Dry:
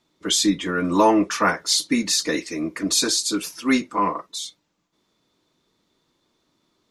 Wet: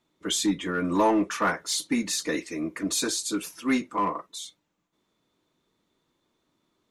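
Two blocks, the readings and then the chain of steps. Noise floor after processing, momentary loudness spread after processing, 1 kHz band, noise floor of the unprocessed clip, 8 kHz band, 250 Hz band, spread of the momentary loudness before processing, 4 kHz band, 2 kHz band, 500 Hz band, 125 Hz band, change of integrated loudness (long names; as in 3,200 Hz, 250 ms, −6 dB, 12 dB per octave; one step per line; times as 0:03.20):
−76 dBFS, 9 LU, −5.0 dB, −71 dBFS, −6.5 dB, −4.5 dB, 10 LU, −8.5 dB, −5.0 dB, −5.0 dB, −4.5 dB, −5.5 dB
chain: parametric band 4,900 Hz −6.5 dB 0.7 octaves
in parallel at −5 dB: hard clipping −17 dBFS, distortion −11 dB
on the sum: level −8 dB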